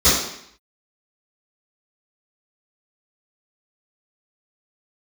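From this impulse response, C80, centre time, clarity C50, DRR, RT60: 5.5 dB, 58 ms, 1.0 dB, −19.0 dB, 0.70 s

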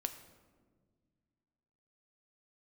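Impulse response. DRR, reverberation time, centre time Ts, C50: 7.0 dB, 1.6 s, 13 ms, 11.0 dB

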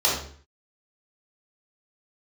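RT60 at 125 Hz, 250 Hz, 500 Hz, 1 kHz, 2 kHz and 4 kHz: 0.60, 0.55, 0.50, 0.50, 0.50, 0.45 seconds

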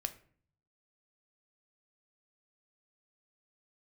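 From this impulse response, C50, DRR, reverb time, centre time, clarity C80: 15.0 dB, 8.5 dB, 0.50 s, 5 ms, 19.5 dB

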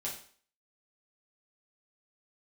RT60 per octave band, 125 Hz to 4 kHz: 0.35, 0.45, 0.45, 0.45, 0.45, 0.45 seconds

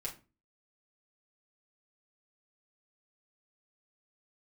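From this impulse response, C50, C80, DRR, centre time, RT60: 12.5 dB, 19.5 dB, −3.5 dB, 15 ms, 0.30 s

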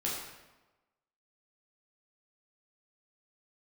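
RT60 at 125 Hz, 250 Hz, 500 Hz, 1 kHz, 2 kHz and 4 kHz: 1.1, 1.1, 1.2, 1.1, 0.95, 0.80 seconds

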